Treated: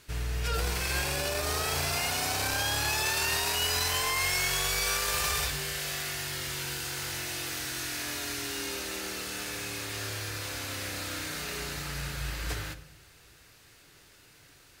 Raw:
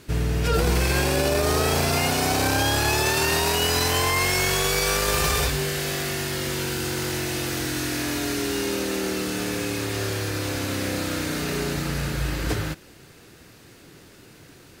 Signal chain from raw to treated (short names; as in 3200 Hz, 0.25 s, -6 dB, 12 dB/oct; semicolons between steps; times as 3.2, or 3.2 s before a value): bell 240 Hz -13 dB 2.7 oct; reverb RT60 1.1 s, pre-delay 7 ms, DRR 12.5 dB; gain -4.5 dB